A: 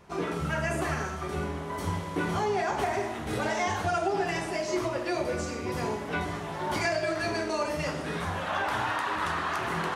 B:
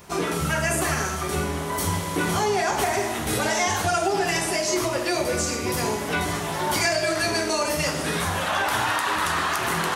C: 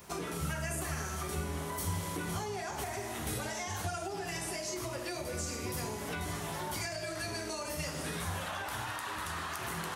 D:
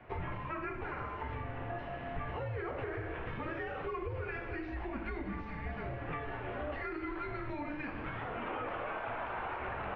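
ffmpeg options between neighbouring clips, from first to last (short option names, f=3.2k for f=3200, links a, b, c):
-filter_complex "[0:a]aemphasis=mode=production:type=75kf,asplit=2[a][b];[b]alimiter=limit=-23dB:level=0:latency=1:release=166,volume=1dB[c];[a][c]amix=inputs=2:normalize=0"
-filter_complex "[0:a]acrossover=split=140[a][b];[b]acompressor=threshold=-30dB:ratio=6[c];[a][c]amix=inputs=2:normalize=0,crystalizer=i=0.5:c=0,volume=-6.5dB"
-af "highpass=f=230:t=q:w=0.5412,highpass=f=230:t=q:w=1.307,lowpass=f=2.8k:t=q:w=0.5176,lowpass=f=2.8k:t=q:w=0.7071,lowpass=f=2.8k:t=q:w=1.932,afreqshift=-300,volume=1dB"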